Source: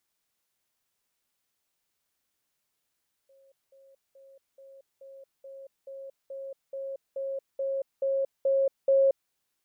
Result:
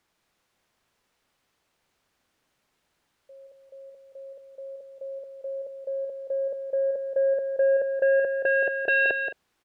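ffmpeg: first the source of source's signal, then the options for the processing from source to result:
-f lavfi -i "aevalsrc='pow(10,(-57+3*floor(t/0.43))/20)*sin(2*PI*543*t)*clip(min(mod(t,0.43),0.23-mod(t,0.43))/0.005,0,1)':duration=6.02:sample_rate=44100"
-filter_complex "[0:a]aemphasis=mode=reproduction:type=75kf,aeval=exprs='0.126*sin(PI/2*2.82*val(0)/0.126)':channel_layout=same,asplit=2[link_01][link_02];[link_02]aecho=0:1:176|217:0.398|0.158[link_03];[link_01][link_03]amix=inputs=2:normalize=0"

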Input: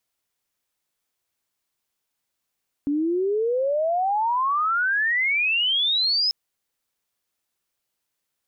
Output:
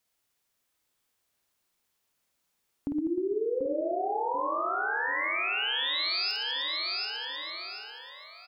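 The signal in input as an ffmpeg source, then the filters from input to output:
-f lavfi -i "aevalsrc='pow(10,(-20+1.5*t/3.44)/20)*sin(2*PI*280*3.44/log(5200/280)*(exp(log(5200/280)*t/3.44)-1))':duration=3.44:sample_rate=44100"
-filter_complex "[0:a]asplit=2[link_01][link_02];[link_02]adelay=737,lowpass=frequency=2800:poles=1,volume=-4.5dB,asplit=2[link_03][link_04];[link_04]adelay=737,lowpass=frequency=2800:poles=1,volume=0.45,asplit=2[link_05][link_06];[link_06]adelay=737,lowpass=frequency=2800:poles=1,volume=0.45,asplit=2[link_07][link_08];[link_08]adelay=737,lowpass=frequency=2800:poles=1,volume=0.45,asplit=2[link_09][link_10];[link_10]adelay=737,lowpass=frequency=2800:poles=1,volume=0.45,asplit=2[link_11][link_12];[link_12]adelay=737,lowpass=frequency=2800:poles=1,volume=0.45[link_13];[link_03][link_05][link_07][link_09][link_11][link_13]amix=inputs=6:normalize=0[link_14];[link_01][link_14]amix=inputs=2:normalize=0,acompressor=threshold=-32dB:ratio=4,asplit=2[link_15][link_16];[link_16]aecho=0:1:50|115|199.5|309.4|452.2:0.631|0.398|0.251|0.158|0.1[link_17];[link_15][link_17]amix=inputs=2:normalize=0"

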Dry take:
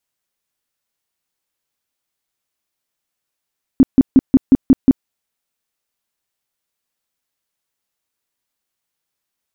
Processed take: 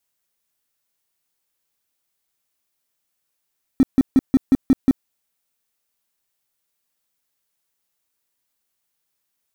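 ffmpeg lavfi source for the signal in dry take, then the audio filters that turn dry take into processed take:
-f lavfi -i "aevalsrc='0.668*sin(2*PI*265*mod(t,0.18))*lt(mod(t,0.18),8/265)':duration=1.26:sample_rate=44100"
-filter_complex "[0:a]alimiter=limit=-11dB:level=0:latency=1:release=46,crystalizer=i=0.5:c=0,asplit=2[link_01][link_02];[link_02]aeval=exprs='val(0)*gte(abs(val(0)),0.112)':channel_layout=same,volume=-10dB[link_03];[link_01][link_03]amix=inputs=2:normalize=0"

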